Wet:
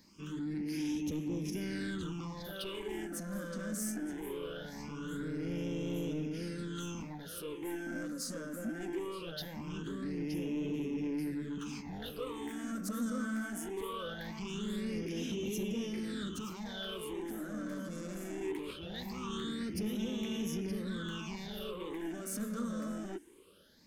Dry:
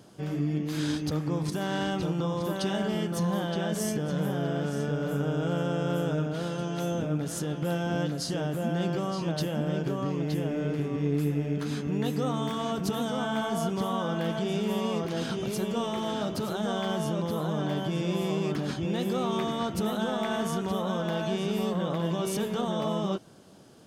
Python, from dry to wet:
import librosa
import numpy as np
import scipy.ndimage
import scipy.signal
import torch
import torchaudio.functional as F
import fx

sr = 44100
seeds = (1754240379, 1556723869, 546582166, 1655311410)

y = fx.fixed_phaser(x, sr, hz=300.0, stages=4)
y = 10.0 ** (-31.0 / 20.0) * np.tanh(y / 10.0 ** (-31.0 / 20.0))
y = fx.phaser_stages(y, sr, stages=8, low_hz=110.0, high_hz=1400.0, hz=0.21, feedback_pct=40)